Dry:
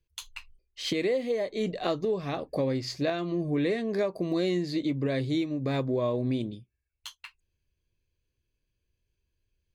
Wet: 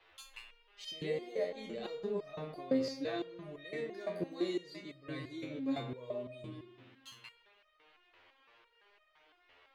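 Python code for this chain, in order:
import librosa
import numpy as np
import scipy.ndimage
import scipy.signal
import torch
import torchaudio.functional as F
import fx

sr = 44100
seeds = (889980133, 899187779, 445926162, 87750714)

y = fx.dmg_noise_band(x, sr, seeds[0], low_hz=320.0, high_hz=3100.0, level_db=-58.0)
y = fx.rev_spring(y, sr, rt60_s=1.4, pass_ms=(32, 56), chirp_ms=45, drr_db=6.5)
y = fx.resonator_held(y, sr, hz=5.9, low_hz=88.0, high_hz=620.0)
y = y * librosa.db_to_amplitude(2.0)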